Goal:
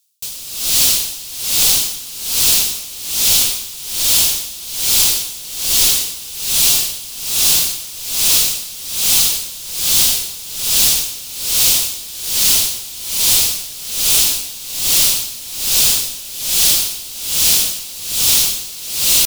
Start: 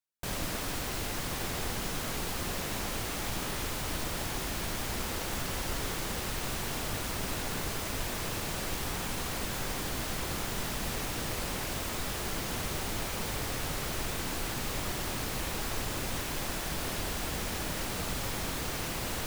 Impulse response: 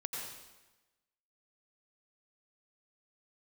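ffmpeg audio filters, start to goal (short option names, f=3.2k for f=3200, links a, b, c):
-filter_complex "[0:a]aexciter=amount=9.8:drive=7.3:freq=2.7k,atempo=1,acontrast=86,asplit=2[a][b];[1:a]atrim=start_sample=2205,lowpass=4.6k,adelay=124[c];[b][c]afir=irnorm=-1:irlink=0,volume=-2dB[d];[a][d]amix=inputs=2:normalize=0,aeval=exprs='val(0)*pow(10,-19*(0.5-0.5*cos(2*PI*1.2*n/s))/20)':c=same,volume=-2dB"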